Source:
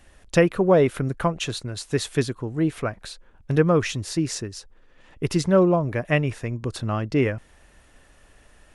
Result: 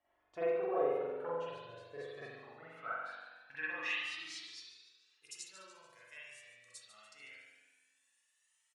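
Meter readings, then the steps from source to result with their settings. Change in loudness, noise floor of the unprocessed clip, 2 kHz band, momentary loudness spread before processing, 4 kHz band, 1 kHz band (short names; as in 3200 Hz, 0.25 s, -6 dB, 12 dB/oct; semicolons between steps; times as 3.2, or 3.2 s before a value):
-16.5 dB, -55 dBFS, -11.0 dB, 13 LU, -14.0 dB, -14.0 dB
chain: tilt shelf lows -6 dB, about 910 Hz; band-pass sweep 610 Hz -> 7700 Hz, 1.98–5.35; resonator 100 Hz, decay 0.22 s, harmonics odd, mix 70%; on a send: feedback echo 0.145 s, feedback 50%, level -12 dB; on the sum: spring tank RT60 1.2 s, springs 42 ms, chirp 35 ms, DRR -8.5 dB; cascading flanger rising 0.23 Hz; gain -3.5 dB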